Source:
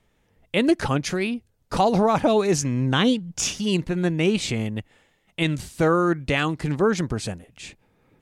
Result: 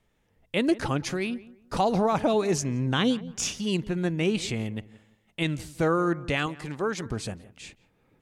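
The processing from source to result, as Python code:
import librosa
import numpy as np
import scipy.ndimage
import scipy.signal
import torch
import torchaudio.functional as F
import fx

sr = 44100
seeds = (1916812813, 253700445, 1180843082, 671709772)

p1 = fx.low_shelf(x, sr, hz=380.0, db=-8.5, at=(6.46, 7.06))
p2 = p1 + fx.echo_filtered(p1, sr, ms=172, feedback_pct=29, hz=1700.0, wet_db=-18.0, dry=0)
y = p2 * librosa.db_to_amplitude(-4.5)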